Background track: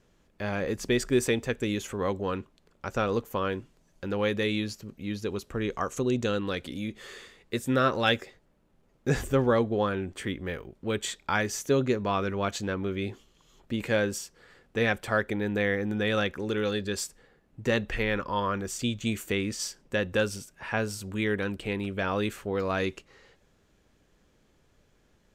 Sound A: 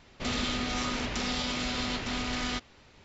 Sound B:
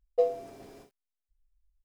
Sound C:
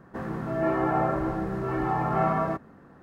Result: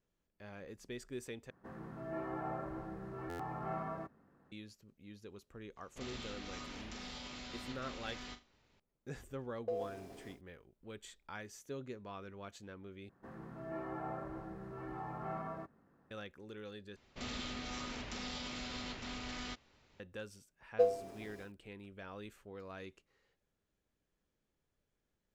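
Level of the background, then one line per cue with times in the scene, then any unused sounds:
background track -20 dB
1.50 s: replace with C -16 dB + buffer glitch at 1.79 s
5.76 s: add A -16 dB + flutter echo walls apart 7.1 m, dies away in 0.25 s
9.50 s: add B -4 dB + compression 5:1, threshold -30 dBFS
13.09 s: replace with C -17.5 dB
16.96 s: replace with A -11.5 dB
20.61 s: add B -3.5 dB

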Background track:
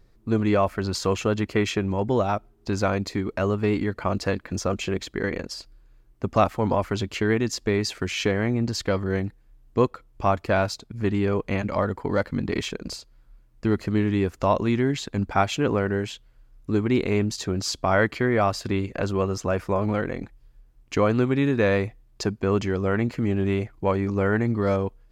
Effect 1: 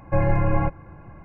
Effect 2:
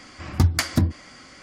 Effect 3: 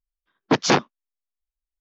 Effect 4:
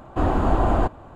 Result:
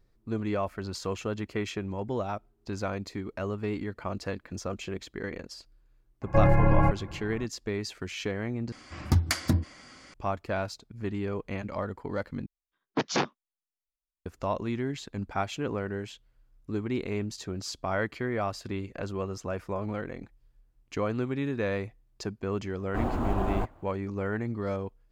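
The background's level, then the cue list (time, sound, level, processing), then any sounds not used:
background track -9 dB
6.22 s: add 1 -10.5 dB + loudness maximiser +12 dB
8.72 s: replace with 2 -5 dB
12.46 s: replace with 3 -9.5 dB
22.78 s: add 4 -9 dB + companding laws mixed up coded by A

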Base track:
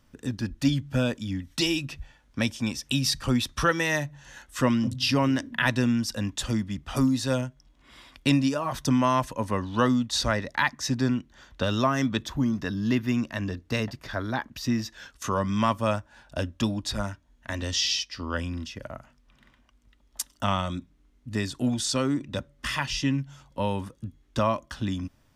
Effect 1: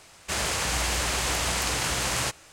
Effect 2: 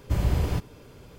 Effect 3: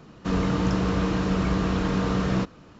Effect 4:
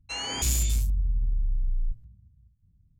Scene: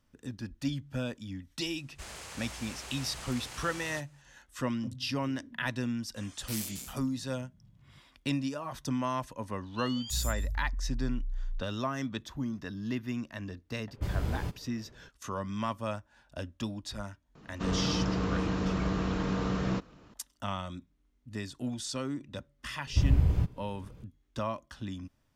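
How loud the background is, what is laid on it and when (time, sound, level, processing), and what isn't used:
base track -9.5 dB
1.70 s: add 1 -17.5 dB
6.06 s: add 4 -5 dB + spectral gate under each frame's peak -25 dB weak
9.68 s: add 4 -8 dB + spectral noise reduction 22 dB
13.91 s: add 2 -8 dB + level-controlled noise filter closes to 1.6 kHz, open at -22.5 dBFS
17.35 s: add 3 -6.5 dB
22.86 s: add 2 -10.5 dB + tone controls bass +11 dB, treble -5 dB

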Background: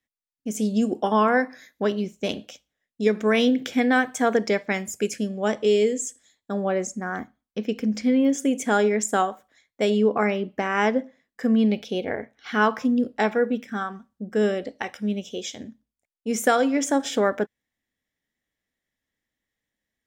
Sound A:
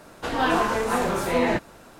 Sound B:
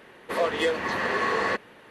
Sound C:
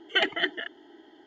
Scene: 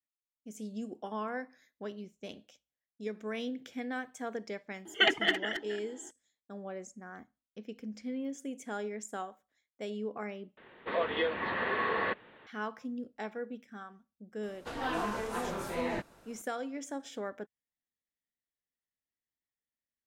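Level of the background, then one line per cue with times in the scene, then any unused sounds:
background -17.5 dB
4.85 s: add C -1 dB + speakerphone echo 270 ms, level -9 dB
10.57 s: replace with B -5.5 dB + elliptic low-pass 3.7 kHz, stop band 60 dB
14.43 s: add A -12 dB

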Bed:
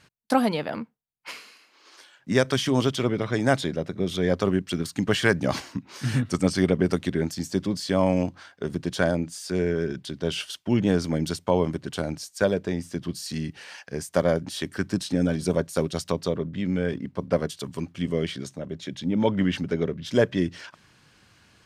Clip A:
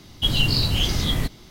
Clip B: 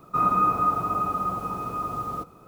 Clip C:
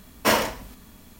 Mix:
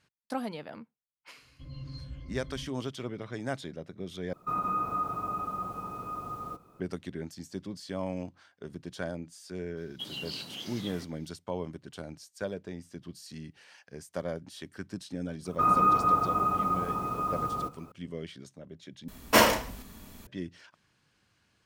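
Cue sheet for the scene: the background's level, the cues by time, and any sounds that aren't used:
bed -13 dB
1.37 s: add A -13 dB + pitch-class resonator C, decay 0.13 s
4.33 s: replace with B -8 dB + peak limiter -15 dBFS
9.77 s: add A -17 dB + high-pass 180 Hz 24 dB/octave
15.45 s: add B -1.5 dB
19.08 s: replace with C

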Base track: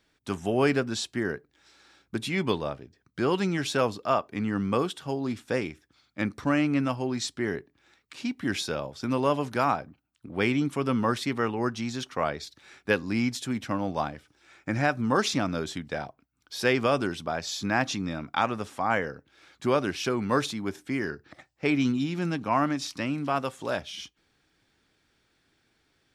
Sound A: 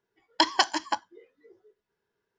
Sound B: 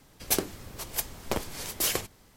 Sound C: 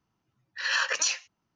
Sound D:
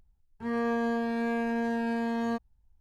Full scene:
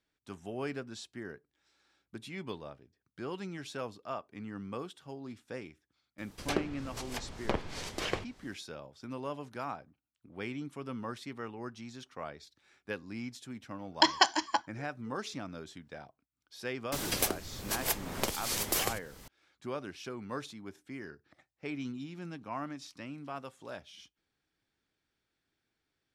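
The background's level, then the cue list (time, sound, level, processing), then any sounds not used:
base track -14 dB
6.18 s: add B -1 dB + low-pass that closes with the level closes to 2.8 kHz, closed at -28.5 dBFS
13.62 s: add A -1.5 dB
16.92 s: add B -2.5 dB + three bands compressed up and down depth 100%
not used: C, D

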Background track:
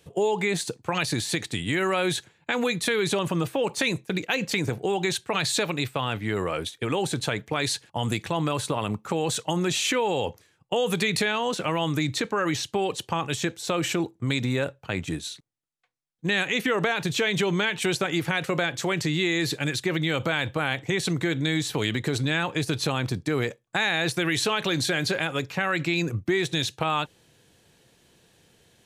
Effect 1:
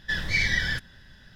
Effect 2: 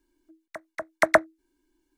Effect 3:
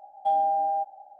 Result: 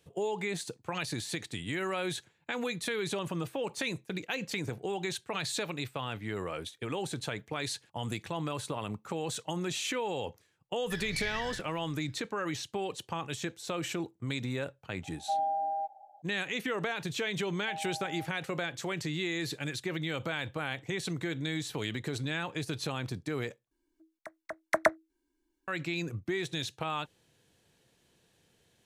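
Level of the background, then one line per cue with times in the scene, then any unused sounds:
background track -9 dB
10.82 s: add 1 -14 dB
15.03 s: add 3 -7 dB
17.42 s: add 3 -17.5 dB
23.71 s: replace with 2 -7 dB

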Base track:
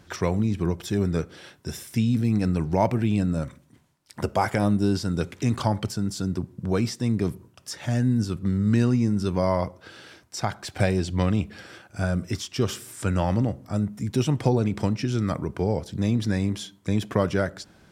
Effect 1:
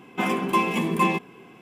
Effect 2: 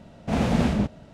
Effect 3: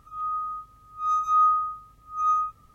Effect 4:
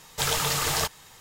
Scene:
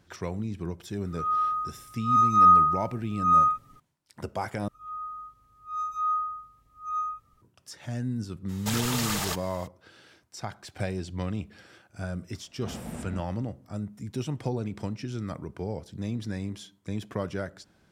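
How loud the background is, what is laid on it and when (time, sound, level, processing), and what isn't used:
base track -9 dB
1.06 s: add 3 -1 dB + comb 7.2 ms, depth 69%
4.68 s: replace with 3 -7.5 dB
8.48 s: add 4 -1.5 dB, fades 0.02 s + peak limiter -18.5 dBFS
12.34 s: add 2 -16.5 dB + low-pass 3.5 kHz
not used: 1

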